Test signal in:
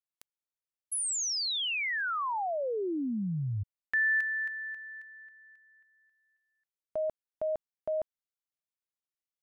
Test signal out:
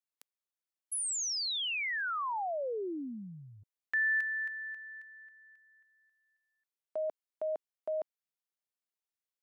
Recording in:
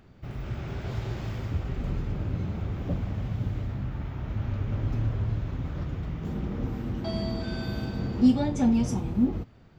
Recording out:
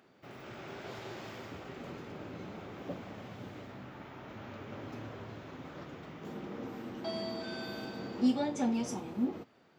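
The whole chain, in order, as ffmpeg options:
ffmpeg -i in.wav -af "highpass=320,volume=-2.5dB" out.wav

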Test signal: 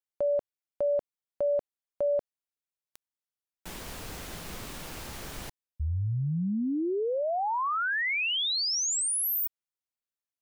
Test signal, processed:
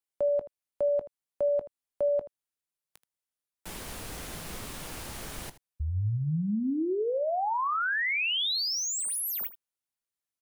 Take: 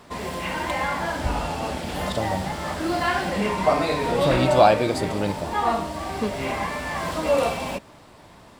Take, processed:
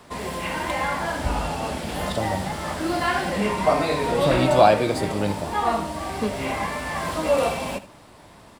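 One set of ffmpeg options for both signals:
ffmpeg -i in.wav -filter_complex "[0:a]equalizer=frequency=10000:width=1.8:gain=4.5,acrossover=split=230|4100[link_01][link_02][link_03];[link_03]asoftclip=type=tanh:threshold=-31dB[link_04];[link_01][link_02][link_04]amix=inputs=3:normalize=0,aecho=1:1:19|79:0.158|0.158" out.wav

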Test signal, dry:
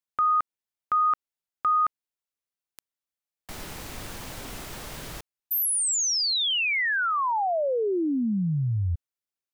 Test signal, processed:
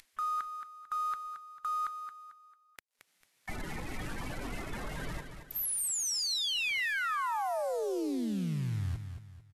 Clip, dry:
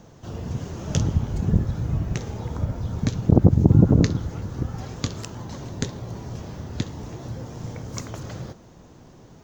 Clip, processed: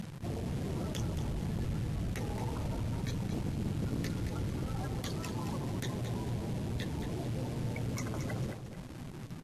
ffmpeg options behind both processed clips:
ffmpeg -i in.wav -filter_complex "[0:a]afftdn=noise_reduction=28:noise_floor=-37,equalizer=frequency=79:width_type=o:width=1.2:gain=-5.5,asplit=2[link_01][link_02];[link_02]acompressor=mode=upward:threshold=-29dB:ratio=2.5:attack=86:release=408:knee=2.83:detection=peak,volume=-2.5dB[link_03];[link_01][link_03]amix=inputs=2:normalize=0,equalizer=frequency=500:width_type=o:width=1:gain=-3,equalizer=frequency=2000:width_type=o:width=1:gain=11,equalizer=frequency=4000:width_type=o:width=1:gain=4,areverse,acompressor=threshold=-28dB:ratio=8:attack=0.38:release=21:knee=1:detection=rms,areverse,aeval=exprs='(mod(13.3*val(0)+1,2)-1)/13.3':channel_layout=same,acrusher=bits=8:dc=4:mix=0:aa=0.000001,aecho=1:1:223|446|669|892:0.376|0.139|0.0515|0.019,volume=-4dB" -ar 32000 -c:a libvorbis -b:a 48k out.ogg

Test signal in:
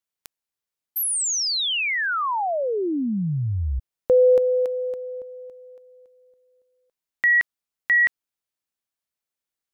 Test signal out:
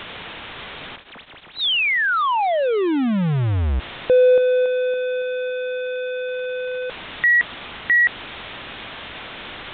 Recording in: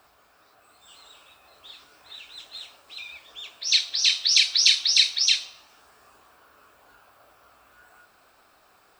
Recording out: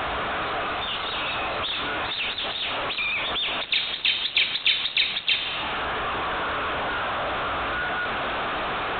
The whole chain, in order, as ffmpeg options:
ffmpeg -i in.wav -af "aeval=exprs='val(0)+0.5*0.1*sgn(val(0))':channel_layout=same" -ar 8000 -c:a pcm_mulaw out.wav

